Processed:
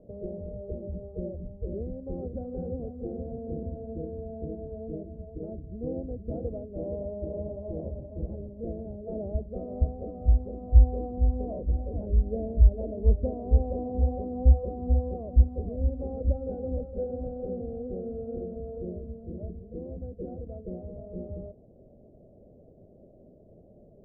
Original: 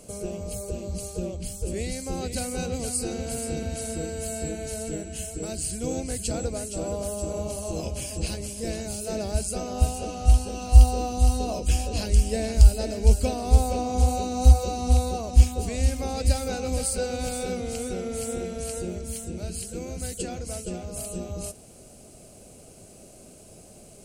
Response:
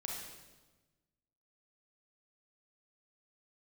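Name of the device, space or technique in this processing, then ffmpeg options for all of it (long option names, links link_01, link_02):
under water: -af "lowpass=frequency=570:width=0.5412,lowpass=frequency=570:width=1.3066,equalizer=frequency=600:width_type=o:width=0.44:gain=5,volume=-4dB"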